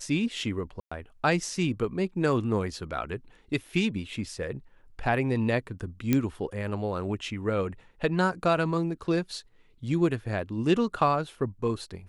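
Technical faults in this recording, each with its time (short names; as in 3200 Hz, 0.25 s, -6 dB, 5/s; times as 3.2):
0.8–0.92 gap 0.115 s
6.13 pop -10 dBFS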